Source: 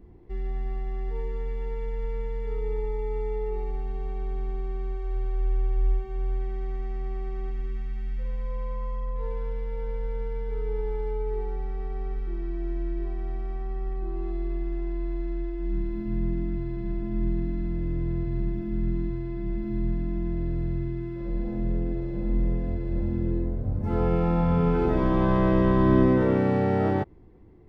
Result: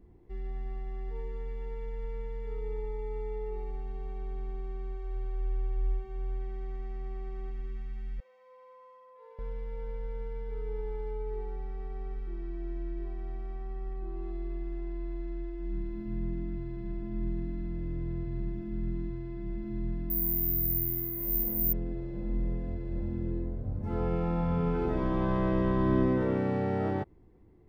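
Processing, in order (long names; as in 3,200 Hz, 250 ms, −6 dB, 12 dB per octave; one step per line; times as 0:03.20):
0:08.20–0:09.39: four-pole ladder high-pass 500 Hz, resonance 40%
0:20.10–0:21.73: bad sample-rate conversion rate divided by 3×, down none, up zero stuff
level −6.5 dB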